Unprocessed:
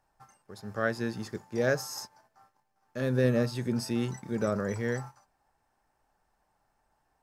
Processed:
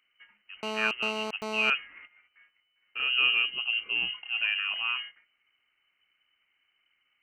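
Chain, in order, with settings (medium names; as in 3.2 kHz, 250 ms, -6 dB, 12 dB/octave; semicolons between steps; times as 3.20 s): 3.31–4.17 s: peaking EQ 1.2 kHz -6 dB 0.5 oct; frequency inversion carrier 3 kHz; 0.63–1.70 s: mobile phone buzz -34 dBFS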